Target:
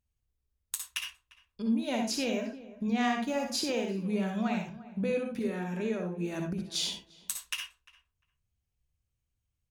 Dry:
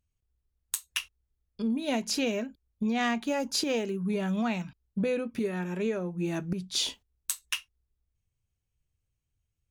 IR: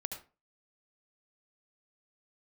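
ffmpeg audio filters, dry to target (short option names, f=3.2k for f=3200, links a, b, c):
-filter_complex "[0:a]asplit=2[a][b];[b]adelay=349,lowpass=f=1.4k:p=1,volume=-17dB,asplit=2[c][d];[d]adelay=349,lowpass=f=1.4k:p=1,volume=0.19[e];[a][c][e]amix=inputs=3:normalize=0[f];[1:a]atrim=start_sample=2205,asetrate=52920,aresample=44100[g];[f][g]afir=irnorm=-1:irlink=0"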